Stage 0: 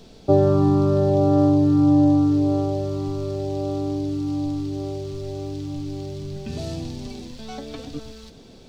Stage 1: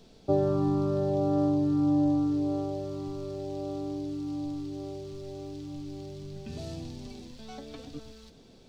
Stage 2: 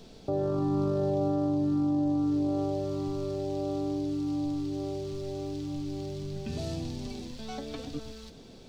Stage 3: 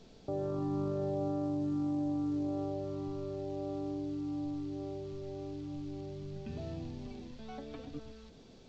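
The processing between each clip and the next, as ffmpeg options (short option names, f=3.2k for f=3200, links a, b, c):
-af "bandreject=f=50:t=h:w=6,bandreject=f=100:t=h:w=6,volume=-8.5dB"
-filter_complex "[0:a]asplit=2[a][b];[b]acompressor=threshold=-36dB:ratio=6,volume=-2dB[c];[a][c]amix=inputs=2:normalize=0,alimiter=limit=-21.5dB:level=0:latency=1:release=13"
-filter_complex "[0:a]acrossover=split=3000[a][b];[b]acompressor=threshold=-59dB:ratio=4:attack=1:release=60[c];[a][c]amix=inputs=2:normalize=0,volume=-6.5dB" -ar 16000 -c:a pcm_alaw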